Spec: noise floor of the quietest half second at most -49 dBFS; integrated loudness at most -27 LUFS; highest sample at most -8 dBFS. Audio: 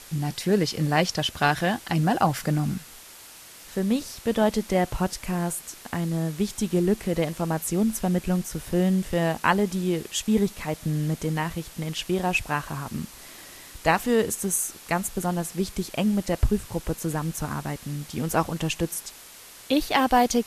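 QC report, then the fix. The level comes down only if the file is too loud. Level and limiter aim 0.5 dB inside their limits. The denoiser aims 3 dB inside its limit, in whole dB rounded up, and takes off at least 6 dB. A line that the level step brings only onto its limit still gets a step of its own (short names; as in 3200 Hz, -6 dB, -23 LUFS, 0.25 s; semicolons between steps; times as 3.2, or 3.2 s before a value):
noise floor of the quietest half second -46 dBFS: fail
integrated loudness -26.0 LUFS: fail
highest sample -5.5 dBFS: fail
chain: denoiser 6 dB, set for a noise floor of -46 dBFS; gain -1.5 dB; limiter -8.5 dBFS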